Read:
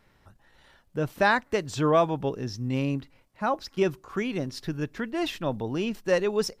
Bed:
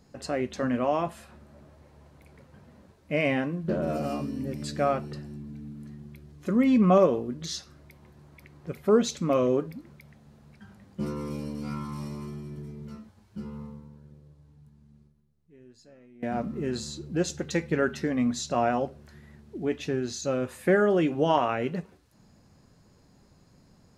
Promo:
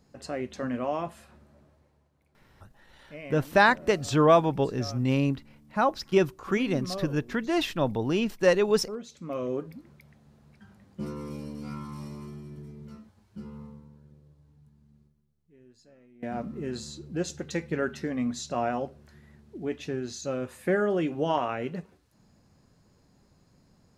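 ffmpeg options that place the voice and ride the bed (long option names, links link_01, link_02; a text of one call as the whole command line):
ffmpeg -i stem1.wav -i stem2.wav -filter_complex "[0:a]adelay=2350,volume=2.5dB[link_01];[1:a]volume=9dB,afade=type=out:start_time=1.35:duration=0.74:silence=0.237137,afade=type=in:start_time=9.09:duration=0.69:silence=0.223872[link_02];[link_01][link_02]amix=inputs=2:normalize=0" out.wav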